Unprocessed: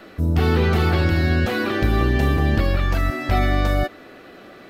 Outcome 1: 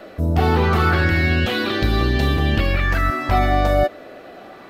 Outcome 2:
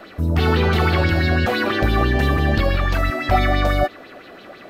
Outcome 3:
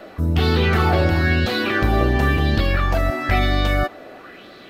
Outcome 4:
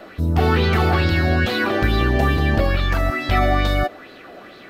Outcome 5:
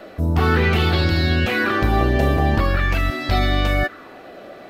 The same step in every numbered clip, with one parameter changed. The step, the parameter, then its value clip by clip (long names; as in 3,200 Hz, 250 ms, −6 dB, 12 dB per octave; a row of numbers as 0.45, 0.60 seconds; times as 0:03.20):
auto-filter bell, speed: 0.25, 6, 0.99, 2.3, 0.45 Hertz